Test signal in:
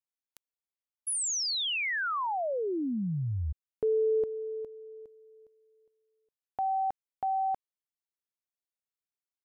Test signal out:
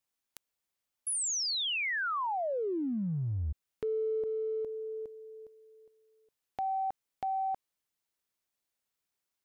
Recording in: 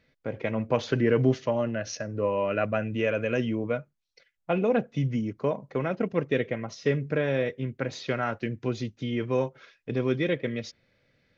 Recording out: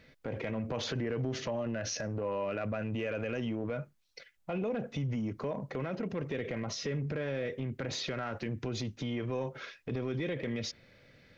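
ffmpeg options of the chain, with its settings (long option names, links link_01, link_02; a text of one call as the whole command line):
ffmpeg -i in.wav -af "acompressor=threshold=-40dB:ratio=5:attack=0.49:release=46:knee=6:detection=peak,volume=8dB" out.wav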